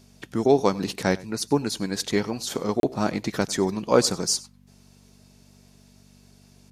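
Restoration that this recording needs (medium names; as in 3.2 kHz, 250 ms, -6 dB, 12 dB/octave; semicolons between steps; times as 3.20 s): de-hum 48.3 Hz, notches 5; interpolate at 2.80 s, 32 ms; inverse comb 95 ms -21.5 dB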